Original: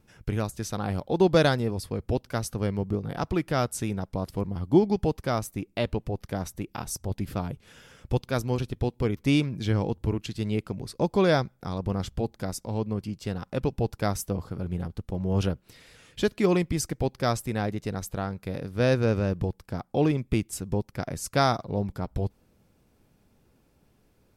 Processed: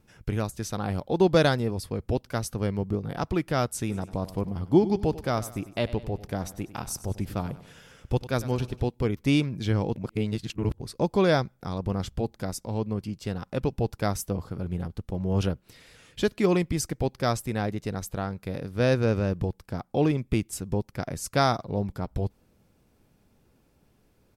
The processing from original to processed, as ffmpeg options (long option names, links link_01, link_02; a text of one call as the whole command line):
ffmpeg -i in.wav -filter_complex "[0:a]asplit=3[link_01][link_02][link_03];[link_01]afade=type=out:start_time=3.89:duration=0.02[link_04];[link_02]aecho=1:1:97|194|291|388:0.158|0.0777|0.0381|0.0186,afade=type=in:start_time=3.89:duration=0.02,afade=type=out:start_time=8.82:duration=0.02[link_05];[link_03]afade=type=in:start_time=8.82:duration=0.02[link_06];[link_04][link_05][link_06]amix=inputs=3:normalize=0,asplit=3[link_07][link_08][link_09];[link_07]atrim=end=9.962[link_10];[link_08]atrim=start=9.958:end=10.802,asetpts=PTS-STARTPTS,areverse[link_11];[link_09]atrim=start=10.798[link_12];[link_10][link_11]acrossfade=duration=0.004:curve1=hsin:curve2=hsin[link_13];[link_13][link_12]acrossfade=duration=0.004:curve1=hsin:curve2=hsin" out.wav